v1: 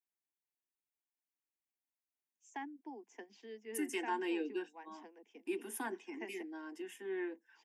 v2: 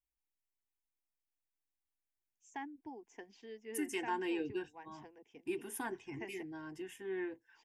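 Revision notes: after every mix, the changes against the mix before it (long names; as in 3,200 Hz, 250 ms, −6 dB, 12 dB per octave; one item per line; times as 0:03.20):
master: remove Butterworth high-pass 200 Hz 96 dB per octave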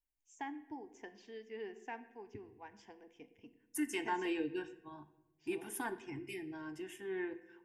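first voice: entry −2.15 s
reverb: on, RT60 0.95 s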